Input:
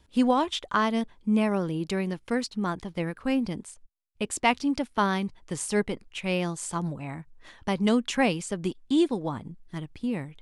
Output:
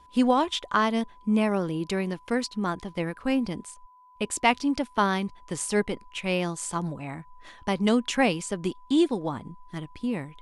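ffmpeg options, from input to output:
ffmpeg -i in.wav -af "aeval=exprs='val(0)+0.002*sin(2*PI*1000*n/s)':channel_layout=same,equalizer=frequency=120:width=0.88:gain=-3,volume=1.5dB" out.wav

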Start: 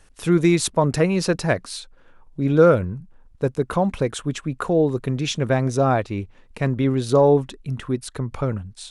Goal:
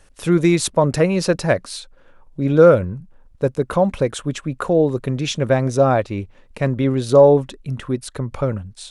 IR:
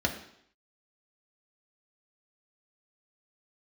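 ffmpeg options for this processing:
-af "equalizer=frequency=560:width=5.8:gain=6,volume=1.5dB"

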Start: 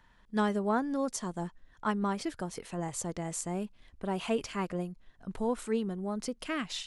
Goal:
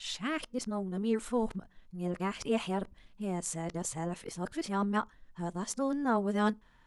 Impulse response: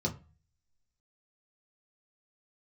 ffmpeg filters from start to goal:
-filter_complex "[0:a]areverse,asplit=2[link_01][link_02];[1:a]atrim=start_sample=2205,lowshelf=frequency=290:gain=-10[link_03];[link_02][link_03]afir=irnorm=-1:irlink=0,volume=-25.5dB[link_04];[link_01][link_04]amix=inputs=2:normalize=0"

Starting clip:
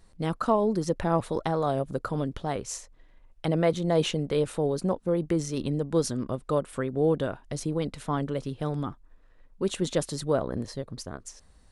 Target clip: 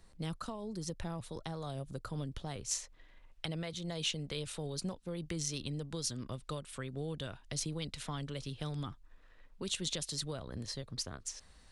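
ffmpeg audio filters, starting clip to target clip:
ffmpeg -i in.wav -filter_complex "[0:a]asetnsamples=nb_out_samples=441:pad=0,asendcmd='2.71 equalizer g 9',equalizer=frequency=3100:width=0.41:gain=2.5,alimiter=limit=-16dB:level=0:latency=1:release=496,acrossover=split=150|3000[link_01][link_02][link_03];[link_02]acompressor=threshold=-44dB:ratio=2.5[link_04];[link_01][link_04][link_03]amix=inputs=3:normalize=0,volume=-3.5dB" out.wav

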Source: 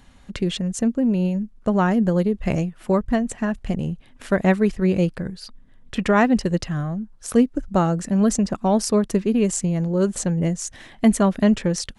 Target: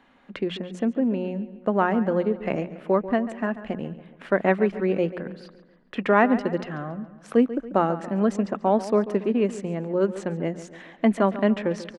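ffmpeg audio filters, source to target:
ffmpeg -i in.wav -filter_complex "[0:a]acrossover=split=210 3100:gain=0.0708 1 0.0794[link_01][link_02][link_03];[link_01][link_02][link_03]amix=inputs=3:normalize=0,bandreject=frequency=60:width_type=h:width=6,bandreject=frequency=120:width_type=h:width=6,bandreject=frequency=180:width_type=h:width=6,asplit=2[link_04][link_05];[link_05]adelay=140,lowpass=frequency=4000:poles=1,volume=-14dB,asplit=2[link_06][link_07];[link_07]adelay=140,lowpass=frequency=4000:poles=1,volume=0.51,asplit=2[link_08][link_09];[link_09]adelay=140,lowpass=frequency=4000:poles=1,volume=0.51,asplit=2[link_10][link_11];[link_11]adelay=140,lowpass=frequency=4000:poles=1,volume=0.51,asplit=2[link_12][link_13];[link_13]adelay=140,lowpass=frequency=4000:poles=1,volume=0.51[link_14];[link_06][link_08][link_10][link_12][link_14]amix=inputs=5:normalize=0[link_15];[link_04][link_15]amix=inputs=2:normalize=0" out.wav

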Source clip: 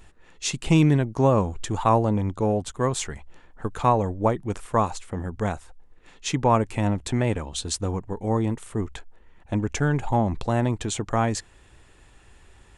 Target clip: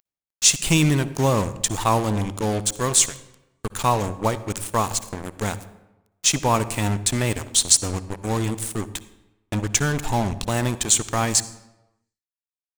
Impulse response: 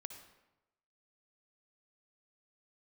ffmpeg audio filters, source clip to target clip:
-filter_complex "[0:a]crystalizer=i=9:c=0,acrusher=bits=3:mix=0:aa=0.5,asplit=2[link_01][link_02];[1:a]atrim=start_sample=2205,lowshelf=frequency=400:gain=10.5[link_03];[link_02][link_03]afir=irnorm=-1:irlink=0,volume=-1.5dB[link_04];[link_01][link_04]amix=inputs=2:normalize=0,volume=-8dB"

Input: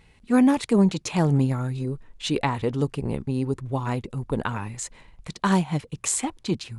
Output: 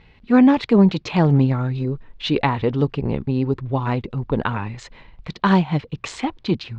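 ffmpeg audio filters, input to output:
ffmpeg -i in.wav -af "lowpass=frequency=4300:width=0.5412,lowpass=frequency=4300:width=1.3066,volume=5dB" out.wav

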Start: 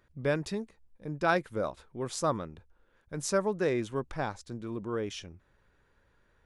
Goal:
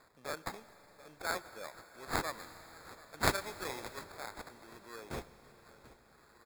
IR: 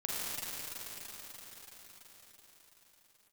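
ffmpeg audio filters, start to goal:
-filter_complex "[0:a]aderivative,aecho=1:1:737|1474|2211:0.0794|0.0342|0.0147,acrossover=split=340[link_01][link_02];[link_02]acompressor=mode=upward:threshold=-58dB:ratio=2.5[link_03];[link_01][link_03]amix=inputs=2:normalize=0,acrusher=samples=15:mix=1:aa=0.000001,asplit=2[link_04][link_05];[1:a]atrim=start_sample=2205,adelay=31[link_06];[link_05][link_06]afir=irnorm=-1:irlink=0,volume=-19.5dB[link_07];[link_04][link_07]amix=inputs=2:normalize=0,asplit=3[link_08][link_09][link_10];[link_08]afade=type=out:start_time=2.37:duration=0.02[link_11];[link_09]adynamicequalizer=threshold=0.00224:dfrequency=1600:dqfactor=0.7:tfrequency=1600:tqfactor=0.7:attack=5:release=100:ratio=0.375:range=2:mode=boostabove:tftype=highshelf,afade=type=in:start_time=2.37:duration=0.02,afade=type=out:start_time=4.02:duration=0.02[link_12];[link_10]afade=type=in:start_time=4.02:duration=0.02[link_13];[link_11][link_12][link_13]amix=inputs=3:normalize=0,volume=6.5dB"

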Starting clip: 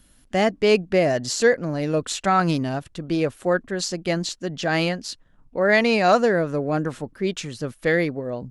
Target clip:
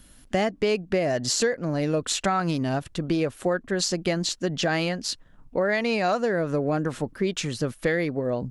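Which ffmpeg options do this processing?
ffmpeg -i in.wav -af "acompressor=threshold=-25dB:ratio=6,volume=4dB" out.wav

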